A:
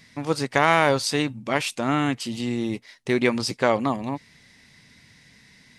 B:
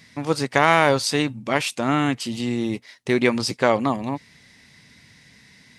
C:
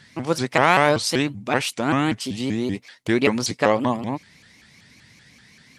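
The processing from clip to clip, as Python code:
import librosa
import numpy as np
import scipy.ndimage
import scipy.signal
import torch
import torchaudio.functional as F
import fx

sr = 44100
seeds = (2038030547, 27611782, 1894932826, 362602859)

y1 = scipy.signal.sosfilt(scipy.signal.butter(2, 40.0, 'highpass', fs=sr, output='sos'), x)
y1 = y1 * 10.0 ** (2.0 / 20.0)
y2 = fx.vibrato_shape(y1, sr, shape='saw_up', rate_hz=5.2, depth_cents=250.0)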